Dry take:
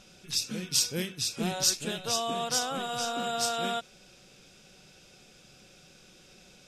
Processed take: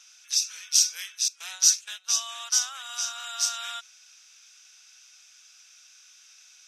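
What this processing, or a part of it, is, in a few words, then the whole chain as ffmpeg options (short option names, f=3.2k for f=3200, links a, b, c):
headphones lying on a table: -filter_complex "[0:a]asettb=1/sr,asplit=3[a][b][c];[a]atrim=end=1.284[d];[b]atrim=start=1.28:end=2.86,asetpts=PTS-STARTPTS,afade=t=in:d=0.004:c=qsin,afade=t=out:st=1.576:d=0.004:c=qsin,agate=range=-15dB:threshold=-33dB:ratio=16:detection=peak[e];[c]atrim=start=2.856[f];[d][e]acrossfade=d=0.004:c1=hsin:c2=qsin[g];[g][f]acrossfade=d=0.004:c1=qsin:c2=hsin,highpass=f=1.2k:w=0.5412,highpass=f=1.2k:w=1.3066,equalizer=f=6k:t=o:w=0.28:g=12"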